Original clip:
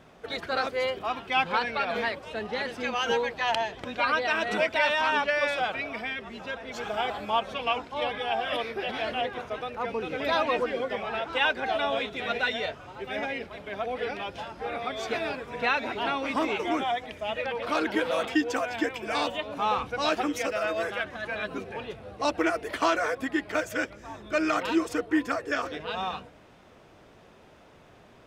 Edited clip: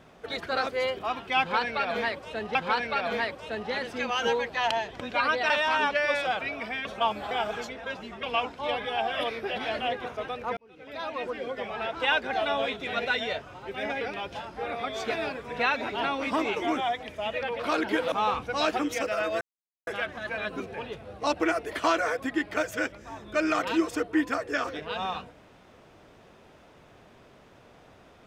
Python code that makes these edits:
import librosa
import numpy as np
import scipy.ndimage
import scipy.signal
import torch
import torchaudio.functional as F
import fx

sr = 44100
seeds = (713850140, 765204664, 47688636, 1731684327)

y = fx.edit(x, sr, fx.repeat(start_s=1.39, length_s=1.16, count=2),
    fx.cut(start_s=4.34, length_s=0.49),
    fx.reverse_span(start_s=6.18, length_s=1.38),
    fx.fade_in_span(start_s=9.9, length_s=1.42),
    fx.cut(start_s=13.34, length_s=0.7),
    fx.cut(start_s=18.15, length_s=1.41),
    fx.insert_silence(at_s=20.85, length_s=0.46), tone=tone)